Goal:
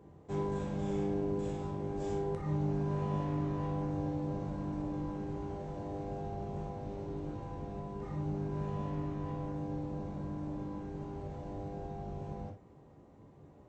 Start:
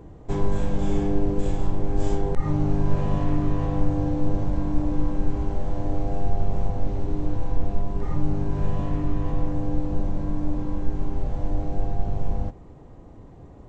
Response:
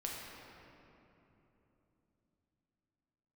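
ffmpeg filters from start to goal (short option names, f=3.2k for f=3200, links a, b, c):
-filter_complex "[0:a]highpass=88[a];[1:a]atrim=start_sample=2205,atrim=end_sample=3528,asetrate=52920,aresample=44100[b];[a][b]afir=irnorm=-1:irlink=0,volume=-6dB"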